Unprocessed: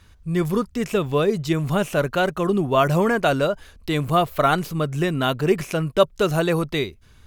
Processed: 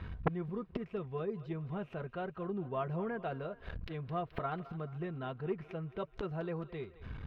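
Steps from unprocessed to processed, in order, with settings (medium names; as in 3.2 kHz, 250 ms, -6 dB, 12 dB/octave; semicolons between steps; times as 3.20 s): treble shelf 3.3 kHz -5.5 dB; inverted gate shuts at -24 dBFS, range -28 dB; distance through air 380 m; comb of notches 290 Hz; thinning echo 214 ms, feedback 57%, high-pass 420 Hz, level -16 dB; transformer saturation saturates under 890 Hz; trim +12 dB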